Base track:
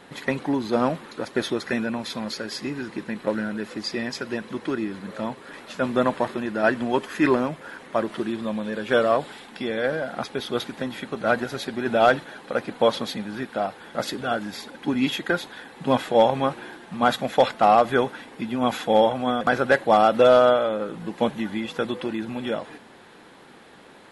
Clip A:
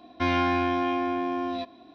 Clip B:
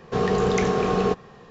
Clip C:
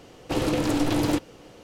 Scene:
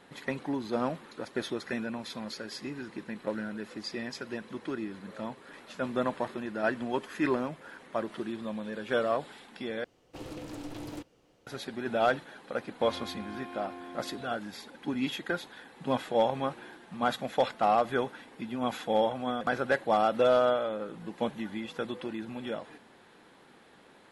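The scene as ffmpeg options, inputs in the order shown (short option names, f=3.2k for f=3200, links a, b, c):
-filter_complex "[0:a]volume=-8.5dB[a];[1:a]alimiter=limit=-18.5dB:level=0:latency=1:release=71[b];[a]asplit=2[c][d];[c]atrim=end=9.844[e];[3:a]atrim=end=1.63,asetpts=PTS-STARTPTS,volume=-17.5dB[f];[d]atrim=start=11.466[g];[b]atrim=end=1.94,asetpts=PTS-STARTPTS,volume=-16.5dB,afade=t=in:d=0.004:c=hsin,afade=t=out:st=1.936:d=0.004:c=hsin,adelay=12610[h];[e][f]acrossfade=d=0.004:c1=hsin:c2=hsin[i];[i][g]acrossfade=d=0.004:c1=hsin:c2=hsin[j];[j][h]amix=inputs=2:normalize=0"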